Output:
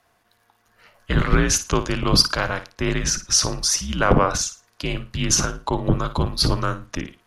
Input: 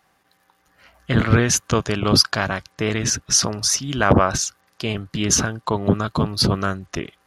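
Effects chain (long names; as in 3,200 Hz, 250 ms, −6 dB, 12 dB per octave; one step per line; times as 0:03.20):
flutter between parallel walls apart 9.6 metres, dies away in 0.28 s
frequency shifter −73 Hz
level −1 dB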